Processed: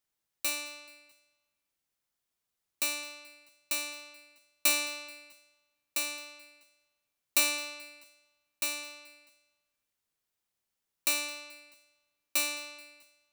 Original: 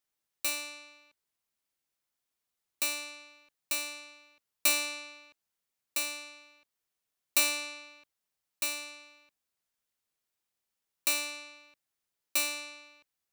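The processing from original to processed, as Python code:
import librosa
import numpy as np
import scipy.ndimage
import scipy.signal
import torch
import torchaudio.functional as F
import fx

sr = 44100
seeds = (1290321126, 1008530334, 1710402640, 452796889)

y = fx.low_shelf(x, sr, hz=180.0, db=4.0)
y = fx.echo_feedback(y, sr, ms=216, feedback_pct=51, wet_db=-22.5)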